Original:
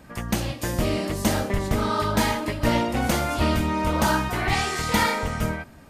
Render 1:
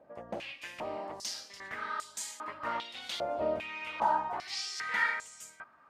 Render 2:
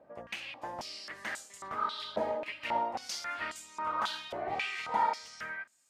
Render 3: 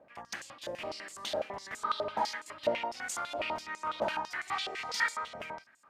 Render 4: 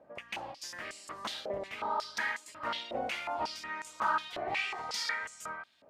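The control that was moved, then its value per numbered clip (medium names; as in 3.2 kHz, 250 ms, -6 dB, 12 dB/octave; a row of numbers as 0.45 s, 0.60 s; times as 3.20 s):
step-sequenced band-pass, rate: 2.5 Hz, 3.7 Hz, 12 Hz, 5.5 Hz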